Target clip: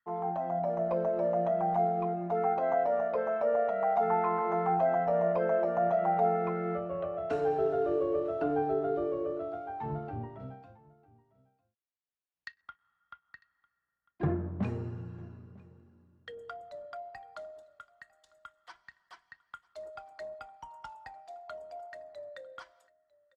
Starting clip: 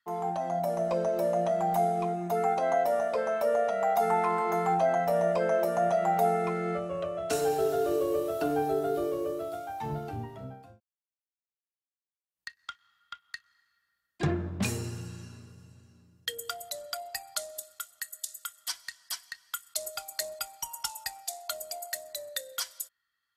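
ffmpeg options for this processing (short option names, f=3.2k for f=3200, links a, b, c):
-af "asetnsamples=n=441:p=0,asendcmd='10.4 lowpass f 3400;12.61 lowpass f 1200',lowpass=1.7k,aecho=1:1:950:0.0631,volume=-1.5dB"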